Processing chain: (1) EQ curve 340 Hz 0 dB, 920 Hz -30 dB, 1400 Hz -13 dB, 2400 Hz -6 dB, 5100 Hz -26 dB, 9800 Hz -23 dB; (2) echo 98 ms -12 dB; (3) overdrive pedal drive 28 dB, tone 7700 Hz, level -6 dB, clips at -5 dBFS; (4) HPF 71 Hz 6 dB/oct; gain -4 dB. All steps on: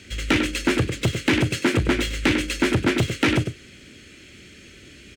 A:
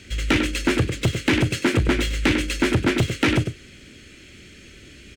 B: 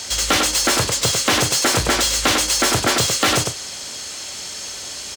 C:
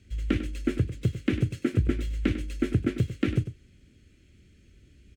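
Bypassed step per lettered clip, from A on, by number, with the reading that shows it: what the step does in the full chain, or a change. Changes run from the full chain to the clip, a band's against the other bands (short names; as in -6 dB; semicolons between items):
4, 125 Hz band +1.5 dB; 1, 8 kHz band +15.0 dB; 3, 125 Hz band +14.5 dB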